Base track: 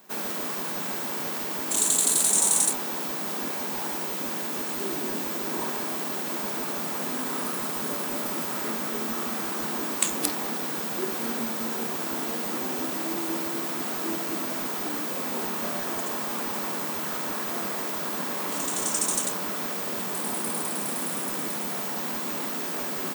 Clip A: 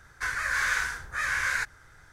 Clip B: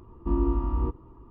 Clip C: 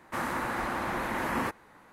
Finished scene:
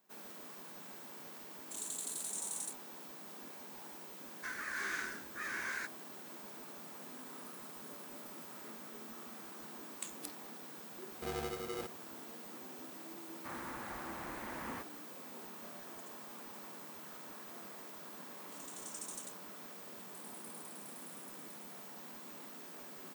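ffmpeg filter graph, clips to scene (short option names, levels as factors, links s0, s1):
-filter_complex "[0:a]volume=0.106[s0];[1:a]highpass=f=270:p=1[s1];[2:a]aeval=exprs='val(0)*sgn(sin(2*PI*420*n/s))':c=same[s2];[s1]atrim=end=2.12,asetpts=PTS-STARTPTS,volume=0.237,afade=t=in:d=0.004:c=hsin,afade=t=out:st=2.116:d=0.004:c=hsin,adelay=4220[s3];[s2]atrim=end=1.3,asetpts=PTS-STARTPTS,volume=0.141,afade=t=in:d=0.004:c=hsin,afade=t=out:st=1.296:d=0.004:c=hsin,adelay=10960[s4];[3:a]atrim=end=1.92,asetpts=PTS-STARTPTS,volume=0.2,afade=t=in:d=0.004:c=hsin,afade=t=out:st=1.916:d=0.004:c=hsin,adelay=587412S[s5];[s0][s3][s4][s5]amix=inputs=4:normalize=0"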